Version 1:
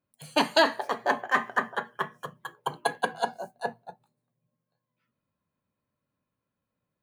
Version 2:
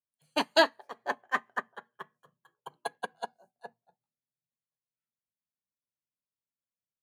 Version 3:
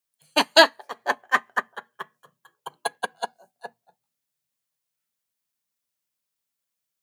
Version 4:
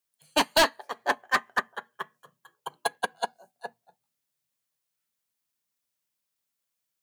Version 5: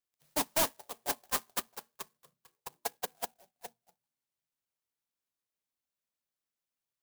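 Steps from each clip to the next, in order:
upward expansion 2.5:1, over -33 dBFS
tilt EQ +1.5 dB/octave; trim +8 dB
hard clipper -16 dBFS, distortion -6 dB
sampling jitter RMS 0.15 ms; trim -8 dB

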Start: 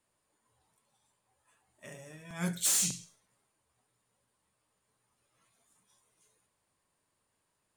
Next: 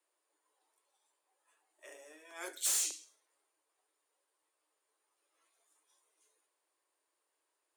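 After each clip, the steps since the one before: steep high-pass 300 Hz 96 dB/octave; trim -4 dB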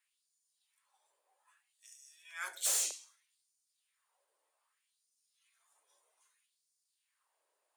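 LFO high-pass sine 0.63 Hz 500–5700 Hz

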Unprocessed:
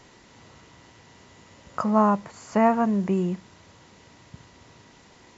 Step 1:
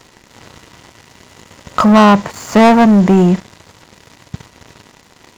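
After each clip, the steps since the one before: waveshaping leveller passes 3; trim +7 dB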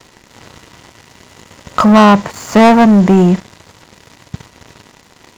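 gate with hold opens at -41 dBFS; trim +1 dB

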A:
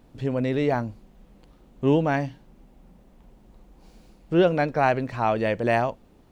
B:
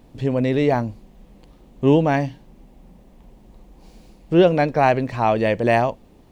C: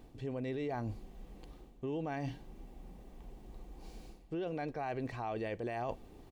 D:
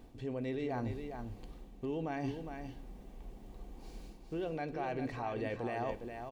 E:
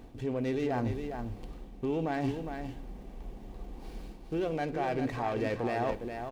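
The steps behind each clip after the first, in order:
peaking EQ 1.4 kHz -6 dB 0.37 oct; trim +5 dB
comb 2.6 ms, depth 32%; peak limiter -14 dBFS, peak gain reduction 11 dB; reverse; compression 5:1, threshold -32 dBFS, peak gain reduction 13 dB; reverse; trim -4.5 dB
delay 409 ms -7 dB; on a send at -11.5 dB: reverberation RT60 0.70 s, pre-delay 3 ms
sliding maximum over 5 samples; trim +6 dB

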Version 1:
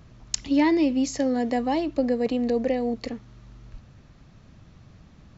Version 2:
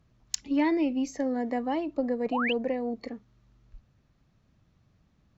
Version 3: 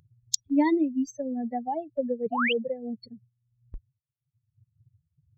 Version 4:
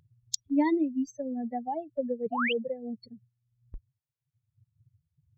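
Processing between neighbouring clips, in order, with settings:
Chebyshev shaper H 3 -21 dB, 8 -37 dB, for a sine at -4.5 dBFS; painted sound rise, 2.32–2.53 s, 640–3300 Hz -27 dBFS; spectral noise reduction 10 dB; trim -2.5 dB
expander on every frequency bin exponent 3; gate with hold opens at -53 dBFS; in parallel at +2 dB: upward compressor, threshold -31 dBFS; on the sum: trim -1.5 dB
treble shelf 5.2 kHz -4.5 dB; trim -2.5 dB

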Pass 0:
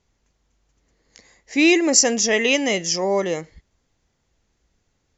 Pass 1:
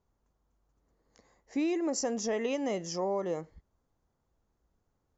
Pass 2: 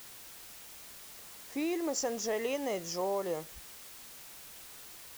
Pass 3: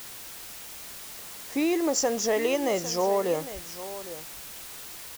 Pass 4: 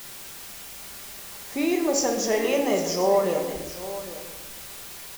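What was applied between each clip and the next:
resonant high shelf 1.6 kHz -9.5 dB, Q 1.5; compression 6:1, threshold -20 dBFS, peak gain reduction 7.5 dB; trim -7.5 dB
peaking EQ 220 Hz -7 dB 1.1 oct; added noise white -50 dBFS
delay 804 ms -14 dB; trim +8 dB
simulated room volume 820 m³, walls mixed, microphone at 1.2 m

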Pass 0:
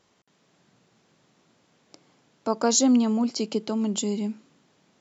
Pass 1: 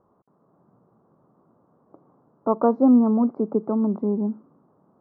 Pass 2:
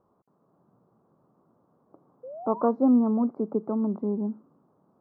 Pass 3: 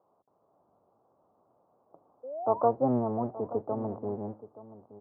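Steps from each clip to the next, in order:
elliptic low-pass 1.2 kHz, stop band 60 dB; trim +4.5 dB
painted sound rise, 2.23–2.69 s, 490–1200 Hz -35 dBFS; trim -4.5 dB
octave divider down 1 oct, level +2 dB; band-pass filter 710 Hz, Q 1.9; echo from a far wall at 150 m, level -16 dB; trim +3.5 dB

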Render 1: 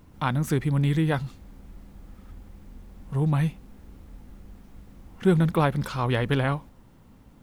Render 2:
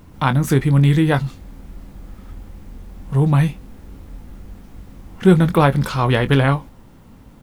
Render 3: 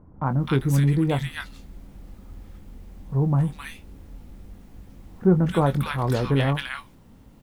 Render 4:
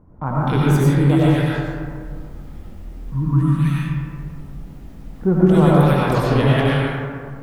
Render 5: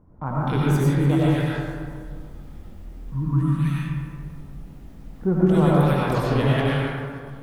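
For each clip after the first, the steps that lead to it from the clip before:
doubling 22 ms -11 dB; trim +8 dB
bands offset in time lows, highs 260 ms, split 1.3 kHz; trim -6 dB
time-frequency box 3.01–3.56 s, 330–920 Hz -21 dB; algorithmic reverb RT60 2.1 s, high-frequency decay 0.35×, pre-delay 55 ms, DRR -6 dB
feedback echo behind a high-pass 293 ms, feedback 57%, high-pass 5 kHz, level -13.5 dB; trim -4.5 dB

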